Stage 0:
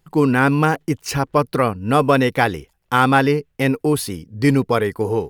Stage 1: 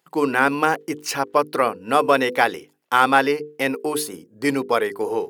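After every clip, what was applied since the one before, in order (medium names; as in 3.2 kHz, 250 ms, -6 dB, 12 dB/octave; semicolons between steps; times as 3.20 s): time-frequency box 4.03–4.45 s, 1.7–6.2 kHz -7 dB; high-pass 360 Hz 12 dB/octave; hum notches 50/100/150/200/250/300/350/400/450/500 Hz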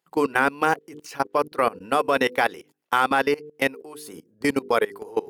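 level held to a coarse grid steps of 21 dB; trim +2 dB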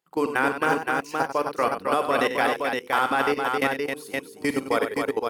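multi-tap echo 45/65/95/265/519 ms -14/-20/-9.5/-5.5/-4 dB; trim -3 dB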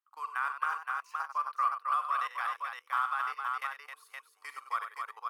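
ladder high-pass 1.1 kHz, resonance 80%; trim -4.5 dB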